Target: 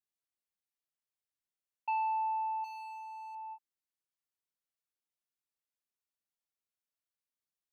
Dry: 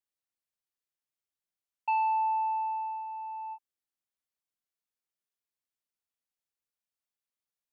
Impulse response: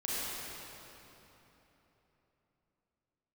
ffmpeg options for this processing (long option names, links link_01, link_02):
-filter_complex "[0:a]asettb=1/sr,asplit=3[link_01][link_02][link_03];[link_01]atrim=end=2.644[link_04];[link_02]atrim=start=2.64:end=3.35,asetpts=PTS-STARTPTS,afade=type=in:duration=0.004:curve=qsin,afade=type=out:start_time=0.706:duration=0.004:curve=qsin,asoftclip=type=hard:threshold=-38.5dB[link_05];[link_03]atrim=start=3.346[link_06];[link_04][link_05]acrossfade=duration=0.004:curve1=hsin:curve2=qsin[link_07];[link_07][link_06]acrossfade=duration=0.004:curve1=qsin:curve2=hsin,volume=-5dB"